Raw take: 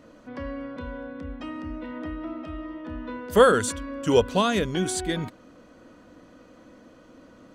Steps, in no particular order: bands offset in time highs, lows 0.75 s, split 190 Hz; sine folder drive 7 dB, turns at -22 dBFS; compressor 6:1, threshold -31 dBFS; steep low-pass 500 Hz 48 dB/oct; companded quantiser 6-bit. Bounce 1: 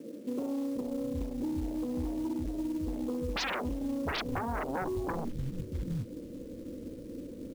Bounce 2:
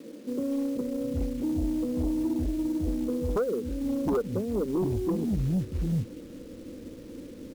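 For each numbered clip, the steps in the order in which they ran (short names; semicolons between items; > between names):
steep low-pass > sine folder > bands offset in time > compressor > companded quantiser; bands offset in time > compressor > steep low-pass > companded quantiser > sine folder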